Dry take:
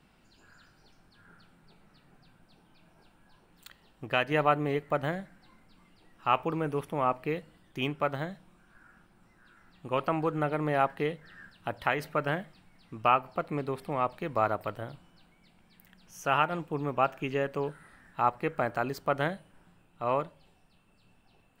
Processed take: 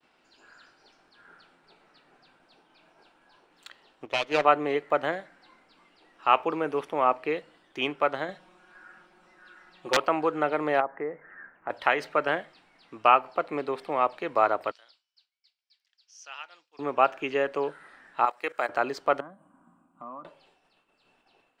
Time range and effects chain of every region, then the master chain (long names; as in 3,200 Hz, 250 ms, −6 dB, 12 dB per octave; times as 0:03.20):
0:04.05–0:04.45: lower of the sound and its delayed copy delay 0.32 ms + expander for the loud parts, over −39 dBFS
0:08.28–0:09.97: comb filter 5.5 ms, depth 93% + wrap-around overflow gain 16.5 dB
0:10.80–0:11.70: elliptic low-pass filter 2,100 Hz, stop band 50 dB + treble cut that deepens with the level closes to 1,100 Hz, closed at −25 dBFS + downward compressor 1.5 to 1, threshold −38 dBFS
0:14.71–0:16.79: resonant band-pass 5,000 Hz, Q 3.2 + one half of a high-frequency compander encoder only
0:18.25–0:18.69: output level in coarse steps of 15 dB + RIAA equalisation recording
0:19.20–0:20.25: drawn EQ curve 130 Hz 0 dB, 240 Hz +14 dB, 400 Hz −9 dB, 590 Hz −5 dB, 1,200 Hz +4 dB, 1,900 Hz −17 dB, 3,000 Hz −20 dB, 4,900 Hz −30 dB, 8,000 Hz +1 dB, 13,000 Hz −12 dB + downward compressor, threshold −42 dBFS + notch comb filter 440 Hz
whole clip: parametric band 200 Hz −6.5 dB 0.22 octaves; downward expander −60 dBFS; three-way crossover with the lows and the highs turned down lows −21 dB, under 270 Hz, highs −19 dB, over 7,500 Hz; level +5 dB